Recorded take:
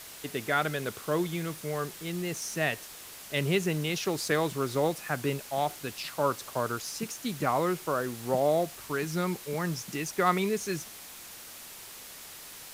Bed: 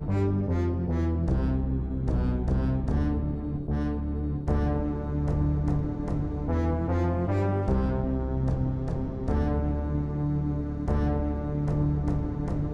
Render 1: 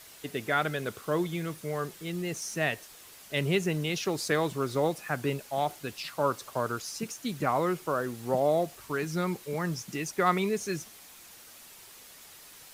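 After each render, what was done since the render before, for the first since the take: denoiser 6 dB, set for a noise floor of -46 dBFS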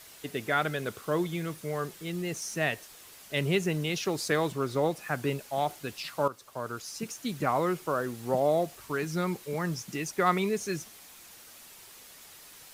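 4.52–5.01 bell 12000 Hz -3 dB 2.3 oct; 6.28–7.16 fade in, from -13 dB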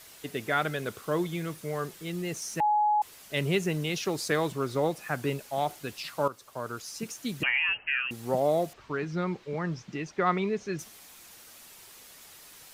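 2.6–3.02 bleep 841 Hz -21 dBFS; 7.43–8.11 inverted band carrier 3000 Hz; 8.73–10.79 air absorption 180 m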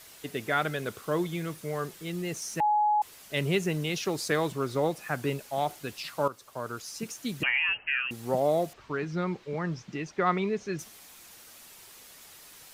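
nothing audible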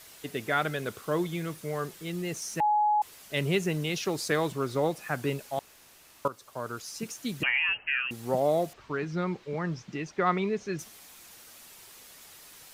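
5.59–6.25 room tone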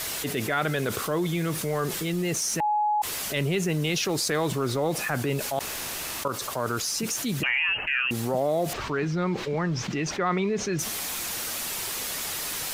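transient shaper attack -5 dB, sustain 0 dB; fast leveller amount 70%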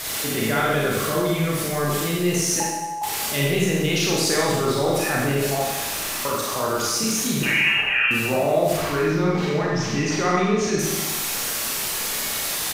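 on a send: feedback echo 89 ms, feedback 56%, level -12 dB; on the sum: Schroeder reverb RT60 0.99 s, combs from 28 ms, DRR -4 dB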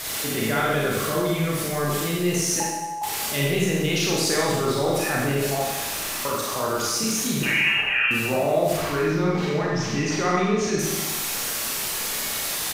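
gain -1.5 dB

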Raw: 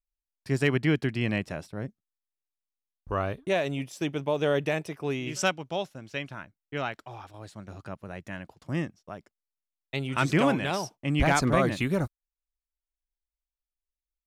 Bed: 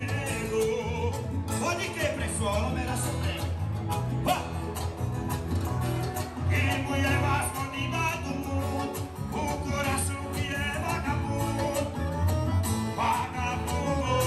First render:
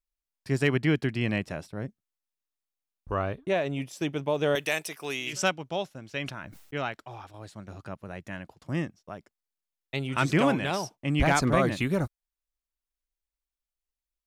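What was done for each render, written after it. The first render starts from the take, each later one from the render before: 3.13–3.75 high shelf 6800 Hz -> 3700 Hz -9.5 dB; 4.55–5.33 tilt +4 dB/oct; 6.07–6.74 sustainer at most 66 dB/s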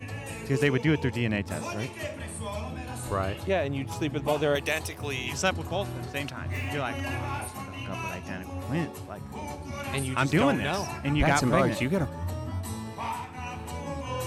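add bed -7 dB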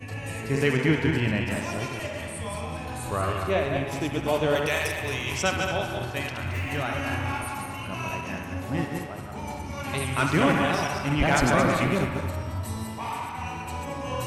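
regenerating reverse delay 0.111 s, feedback 52%, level -4 dB; band-limited delay 67 ms, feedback 74%, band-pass 1500 Hz, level -6 dB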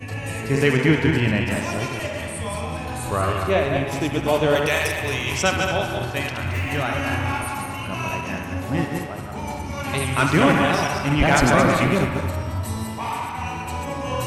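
gain +5 dB

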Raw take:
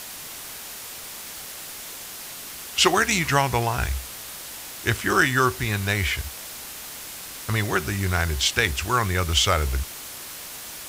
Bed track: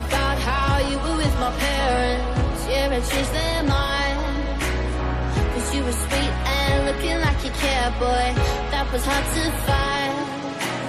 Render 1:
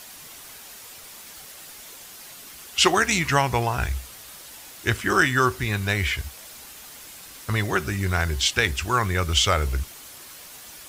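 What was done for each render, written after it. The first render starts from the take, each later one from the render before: denoiser 7 dB, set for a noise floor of -38 dBFS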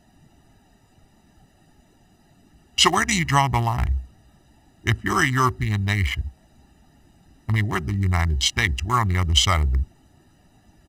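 Wiener smoothing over 41 samples; comb 1 ms, depth 80%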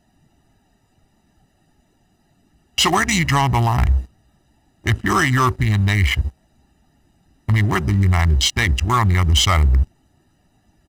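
sample leveller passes 2; limiter -9 dBFS, peak gain reduction 6 dB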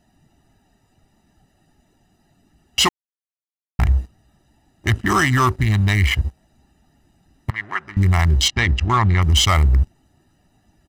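2.89–3.79 mute; 7.5–7.97 band-pass 1600 Hz, Q 1.7; 8.48–9.22 LPF 4400 Hz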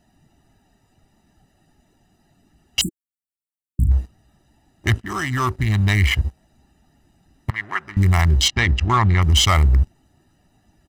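2.81–3.91 brick-wall FIR band-stop 340–7200 Hz; 5–5.9 fade in, from -13.5 dB; 7.53–8.22 high shelf 8400 Hz +6 dB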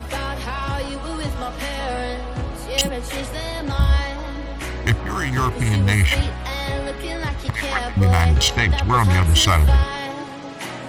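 add bed track -5 dB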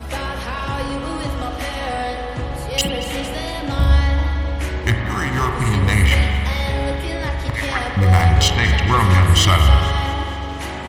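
feedback echo 0.229 s, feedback 58%, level -16.5 dB; spring tank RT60 2.9 s, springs 43 ms, chirp 75 ms, DRR 3 dB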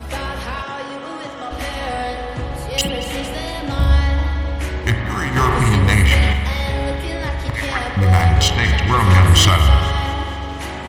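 0.62–1.51 speaker cabinet 280–7500 Hz, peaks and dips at 290 Hz -4 dB, 490 Hz -3 dB, 1000 Hz -4 dB, 2600 Hz -4 dB, 4500 Hz -8 dB; 5.36–6.33 fast leveller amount 50%; 9.07–9.49 sample leveller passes 1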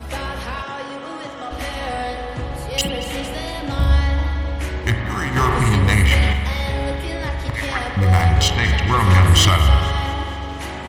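gain -1.5 dB

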